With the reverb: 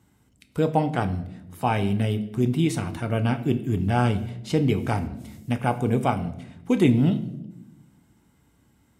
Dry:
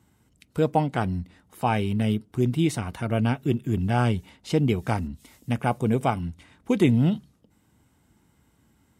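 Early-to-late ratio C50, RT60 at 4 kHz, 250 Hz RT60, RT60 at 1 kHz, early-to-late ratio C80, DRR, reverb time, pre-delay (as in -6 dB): 13.5 dB, 0.65 s, 1.5 s, 0.70 s, 16.5 dB, 8.5 dB, 0.90 s, 7 ms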